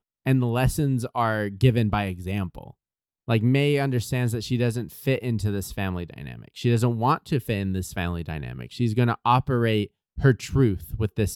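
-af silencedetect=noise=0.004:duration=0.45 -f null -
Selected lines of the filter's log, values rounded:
silence_start: 2.71
silence_end: 3.28 | silence_duration: 0.57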